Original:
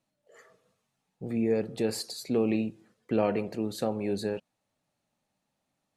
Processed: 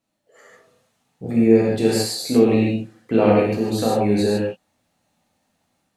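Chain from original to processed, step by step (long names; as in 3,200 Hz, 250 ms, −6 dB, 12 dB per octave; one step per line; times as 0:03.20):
automatic gain control gain up to 5.5 dB
reverb whose tail is shaped and stops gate 180 ms flat, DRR −5 dB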